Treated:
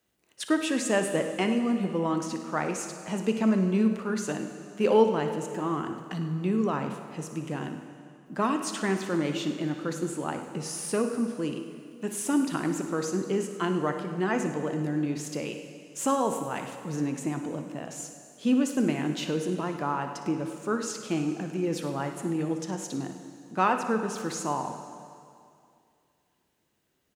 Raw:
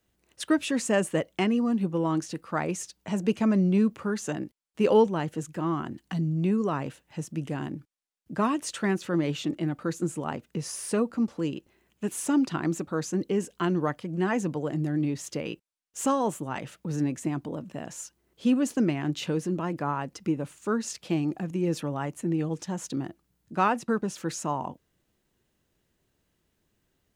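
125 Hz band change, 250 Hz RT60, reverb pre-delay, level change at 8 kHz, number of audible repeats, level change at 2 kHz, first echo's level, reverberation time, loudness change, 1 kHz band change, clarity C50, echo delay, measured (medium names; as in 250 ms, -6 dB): -3.0 dB, 2.4 s, 9 ms, +1.0 dB, 2, +1.0 dB, -13.0 dB, 2.4 s, -0.5 dB, +1.0 dB, 6.5 dB, 59 ms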